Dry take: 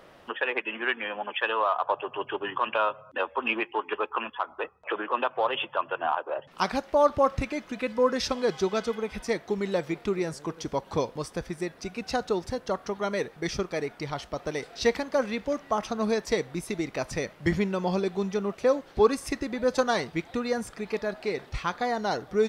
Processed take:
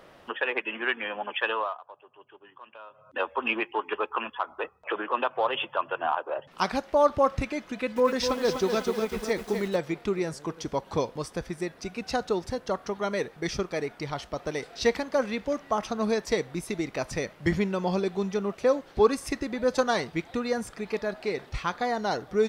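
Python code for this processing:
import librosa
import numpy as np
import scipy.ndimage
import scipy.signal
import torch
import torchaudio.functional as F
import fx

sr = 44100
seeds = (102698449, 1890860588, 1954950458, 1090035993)

y = fx.echo_crushed(x, sr, ms=249, feedback_pct=55, bits=7, wet_db=-6.5, at=(7.61, 9.76))
y = fx.edit(y, sr, fx.fade_down_up(start_s=1.5, length_s=1.71, db=-21.0, fade_s=0.31), tone=tone)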